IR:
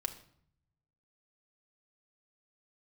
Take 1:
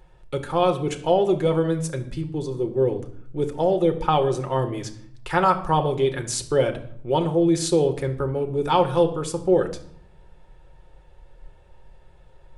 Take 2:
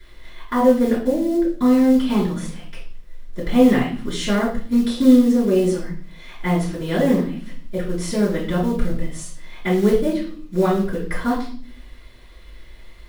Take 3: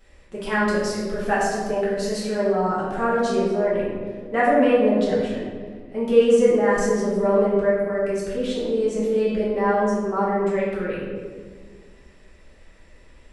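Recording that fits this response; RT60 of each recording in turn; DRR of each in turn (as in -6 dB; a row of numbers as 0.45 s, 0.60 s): 1; 0.60 s, 0.45 s, 1.7 s; 5.5 dB, -10.5 dB, -8.0 dB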